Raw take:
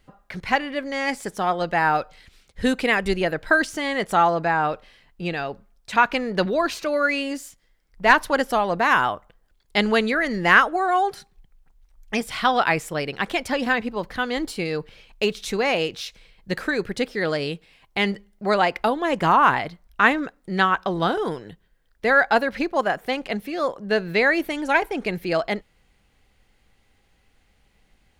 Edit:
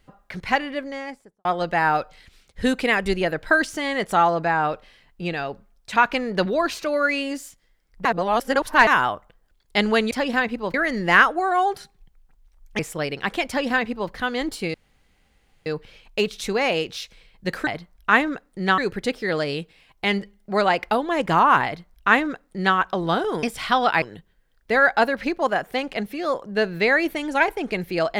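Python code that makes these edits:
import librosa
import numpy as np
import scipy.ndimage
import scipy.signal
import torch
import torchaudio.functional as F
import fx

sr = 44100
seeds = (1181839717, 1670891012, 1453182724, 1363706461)

y = fx.studio_fade_out(x, sr, start_s=0.62, length_s=0.83)
y = fx.edit(y, sr, fx.reverse_span(start_s=8.05, length_s=0.82),
    fx.move(start_s=12.16, length_s=0.59, to_s=21.36),
    fx.duplicate(start_s=13.44, length_s=0.63, to_s=10.11),
    fx.insert_room_tone(at_s=14.7, length_s=0.92),
    fx.duplicate(start_s=19.58, length_s=1.11, to_s=16.71), tone=tone)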